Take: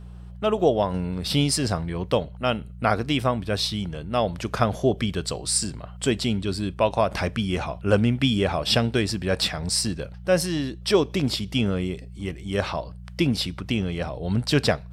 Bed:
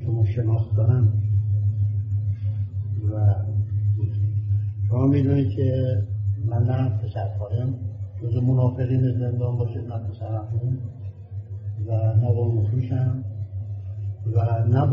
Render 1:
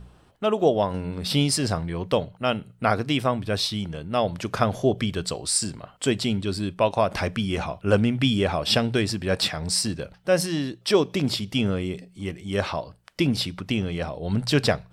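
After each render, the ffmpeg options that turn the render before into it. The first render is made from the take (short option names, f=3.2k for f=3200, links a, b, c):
-af "bandreject=f=60:t=h:w=4,bandreject=f=120:t=h:w=4,bandreject=f=180:t=h:w=4"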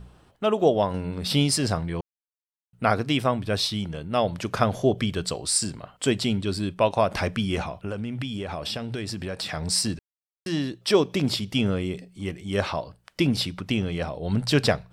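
-filter_complex "[0:a]asettb=1/sr,asplit=3[a][b][c];[a]atrim=end=7.614[d];[b]atrim=start=7.61:end=9.49,asetpts=PTS-STARTPTS,afade=t=in:d=0.004:c=qsin,afade=t=out:st=1.876:d=0.004:c=qsin,acompressor=threshold=-27dB:ratio=10:attack=3.2:release=140:knee=1:detection=peak[e];[c]atrim=start=9.486[f];[d][e]acrossfade=d=0.004:c1=hsin:c2=qsin[g];[g][f]acrossfade=d=0.004:c1=qsin:c2=hsin,asplit=5[h][i][j][k][l];[h]atrim=end=2.01,asetpts=PTS-STARTPTS,afade=t=out:st=2.006:d=0.004:c=hsin[m];[i]atrim=start=2.01:end=2.73,asetpts=PTS-STARTPTS,volume=0[n];[j]atrim=start=2.73:end=9.99,asetpts=PTS-STARTPTS,afade=t=in:d=0.004:c=hsin,afade=t=out:st=7.256:d=0.004:c=hsin[o];[k]atrim=start=9.99:end=10.46,asetpts=PTS-STARTPTS,volume=0[p];[l]atrim=start=10.46,asetpts=PTS-STARTPTS,afade=t=in:d=0.004:c=hsin[q];[m][n][o][p][q]concat=n=5:v=0:a=1"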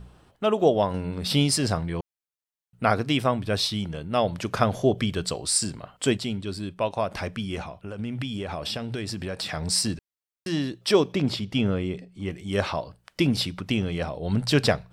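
-filter_complex "[0:a]asettb=1/sr,asplit=3[a][b][c];[a]atrim=end=11.124[d];[b]atrim=start=11.12:end=12.31,asetpts=PTS-STARTPTS,afade=t=in:d=0.004:c=qsin,afade=t=out:st=1.186:d=0.004:c=qsin,lowpass=f=3.3k:p=1[e];[c]atrim=start=12.306[f];[d][e]acrossfade=d=0.004:c1=hsin:c2=qsin[g];[g][f]acrossfade=d=0.004:c1=qsin:c2=hsin,asplit=3[h][i][j];[h]atrim=end=6.172[k];[i]atrim=start=6.168:end=7.992,asetpts=PTS-STARTPTS,volume=-5dB[l];[j]atrim=start=7.988[m];[k][l]acrossfade=d=0.004:c1=hsin:c2=hsin[n];[n][m]acrossfade=d=0.004:c1=hsin:c2=hsin"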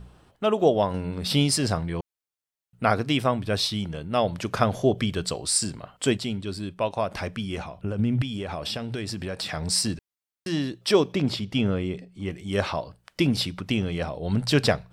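-filter_complex "[0:a]asettb=1/sr,asplit=3[a][b][c];[a]atrim=end=7.784[d];[b]atrim=start=7.78:end=8.22,asetpts=PTS-STARTPTS,afade=t=in:d=0.004:c=qsin,afade=t=out:st=0.436:d=0.004:c=qsin,lowshelf=f=420:g=10[e];[c]atrim=start=8.216[f];[d][e]acrossfade=d=0.004:c1=hsin:c2=qsin[g];[g][f]acrossfade=d=0.004:c1=qsin:c2=hsin"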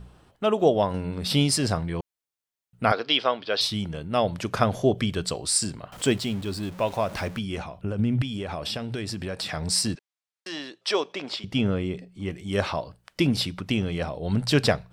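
-filter_complex "[0:a]asettb=1/sr,asplit=3[a][b][c];[a]atrim=end=2.924[d];[b]atrim=start=2.92:end=3.61,asetpts=PTS-STARTPTS,afade=t=in:d=0.004:c=qsin,afade=t=out:st=0.686:d=0.004:c=qsin,highpass=440,equalizer=f=470:t=q:w=4:g=4,equalizer=f=1.4k:t=q:w=4:g=3,equalizer=f=3.2k:t=q:w=4:g=8,equalizer=f=4.7k:t=q:w=4:g=10,lowpass=f=5k:w=0.5412,lowpass=f=5k:w=1.3066[e];[c]atrim=start=3.606[f];[d][e]acrossfade=d=0.004:c1=hsin:c2=qsin[g];[g][f]acrossfade=d=0.004:c1=qsin:c2=hsin,asettb=1/sr,asplit=3[h][i][j];[h]atrim=end=5.924[k];[i]atrim=start=5.92:end=7.39,asetpts=PTS-STARTPTS,afade=t=in:d=0.004:c=qsin,afade=t=out:st=1.466:d=0.004:c=qsin,aeval=exprs='val(0)+0.5*0.0126*sgn(val(0))':c=same[l];[j]atrim=start=7.386[m];[k][l]acrossfade=d=0.004:c1=hsin:c2=qsin[n];[n][m]acrossfade=d=0.004:c1=qsin:c2=hsin,asettb=1/sr,asplit=3[o][p][q];[o]atrim=end=9.954[r];[p]atrim=start=9.95:end=11.44,asetpts=PTS-STARTPTS,afade=t=in:d=0.004:c=qsin,afade=t=out:st=1.486:d=0.004:c=qsin,highpass=550,lowpass=6.9k[s];[q]atrim=start=11.436[t];[r][s]acrossfade=d=0.004:c1=hsin:c2=qsin[u];[u][t]acrossfade=d=0.004:c1=qsin:c2=hsin"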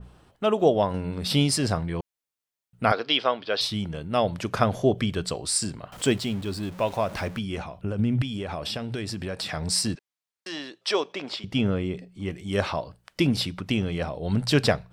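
-af "adynamicequalizer=threshold=0.01:dfrequency=3100:dqfactor=0.7:tfrequency=3100:tqfactor=0.7:attack=5:release=100:ratio=0.375:range=1.5:mode=cutabove:tftype=highshelf"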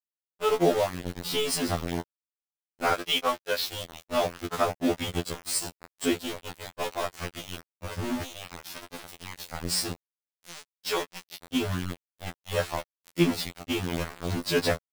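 -af "aeval=exprs='val(0)*gte(abs(val(0)),0.0596)':c=same,afftfilt=real='re*2*eq(mod(b,4),0)':imag='im*2*eq(mod(b,4),0)':win_size=2048:overlap=0.75"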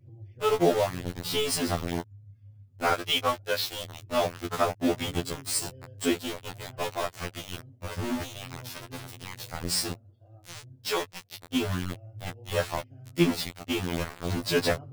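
-filter_complex "[1:a]volume=-25.5dB[a];[0:a][a]amix=inputs=2:normalize=0"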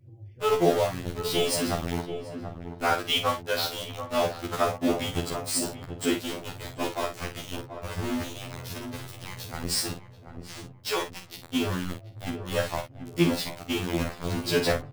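-filter_complex "[0:a]asplit=2[a][b];[b]adelay=48,volume=-8dB[c];[a][c]amix=inputs=2:normalize=0,asplit=2[d][e];[e]adelay=733,lowpass=f=920:p=1,volume=-8dB,asplit=2[f][g];[g]adelay=733,lowpass=f=920:p=1,volume=0.46,asplit=2[h][i];[i]adelay=733,lowpass=f=920:p=1,volume=0.46,asplit=2[j][k];[k]adelay=733,lowpass=f=920:p=1,volume=0.46,asplit=2[l][m];[m]adelay=733,lowpass=f=920:p=1,volume=0.46[n];[d][f][h][j][l][n]amix=inputs=6:normalize=0"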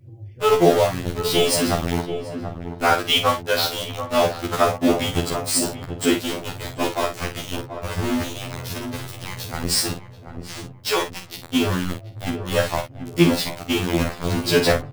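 -af "volume=7dB,alimiter=limit=-2dB:level=0:latency=1"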